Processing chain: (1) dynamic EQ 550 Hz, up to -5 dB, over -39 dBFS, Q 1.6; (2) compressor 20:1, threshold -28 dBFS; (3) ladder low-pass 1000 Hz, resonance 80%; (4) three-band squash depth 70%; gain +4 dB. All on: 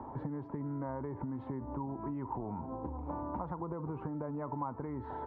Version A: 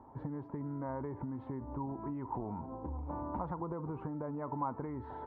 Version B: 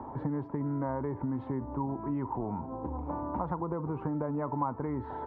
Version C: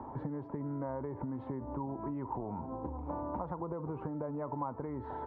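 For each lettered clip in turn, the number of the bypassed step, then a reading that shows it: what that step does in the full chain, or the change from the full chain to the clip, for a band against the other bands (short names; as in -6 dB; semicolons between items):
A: 4, crest factor change +1.5 dB; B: 2, mean gain reduction 4.0 dB; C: 1, 500 Hz band +2.5 dB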